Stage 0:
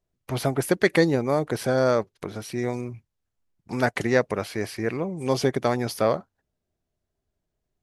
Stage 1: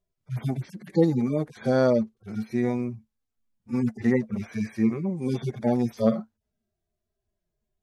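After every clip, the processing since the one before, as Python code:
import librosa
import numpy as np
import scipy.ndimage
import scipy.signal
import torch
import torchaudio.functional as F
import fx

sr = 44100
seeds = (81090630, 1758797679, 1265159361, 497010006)

y = fx.hpss_only(x, sr, part='harmonic')
y = fx.peak_eq(y, sr, hz=220.0, db=14.5, octaves=0.24)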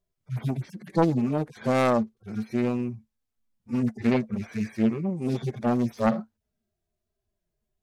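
y = fx.self_delay(x, sr, depth_ms=0.58)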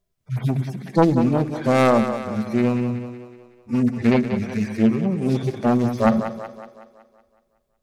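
y = fx.echo_split(x, sr, split_hz=310.0, low_ms=98, high_ms=186, feedback_pct=52, wet_db=-9.0)
y = y * 10.0 ** (5.5 / 20.0)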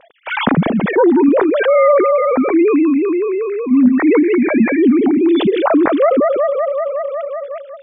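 y = fx.sine_speech(x, sr)
y = fx.env_flatten(y, sr, amount_pct=70)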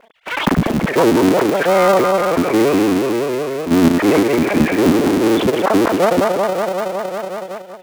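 y = fx.cycle_switch(x, sr, every=3, mode='muted')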